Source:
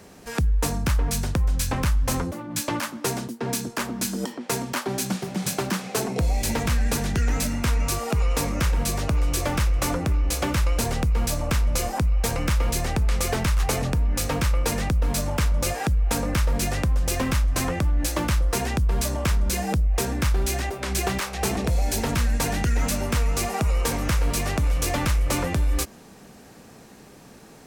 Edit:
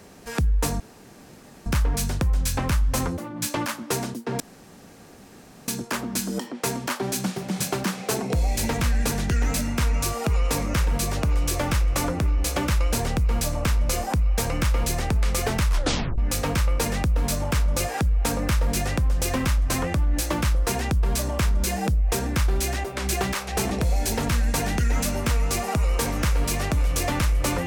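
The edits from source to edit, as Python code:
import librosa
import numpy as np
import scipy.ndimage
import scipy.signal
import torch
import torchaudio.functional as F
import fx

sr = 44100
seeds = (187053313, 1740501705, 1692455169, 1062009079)

y = fx.edit(x, sr, fx.insert_room_tone(at_s=0.8, length_s=0.86),
    fx.insert_room_tone(at_s=3.54, length_s=1.28),
    fx.tape_stop(start_s=13.54, length_s=0.5), tone=tone)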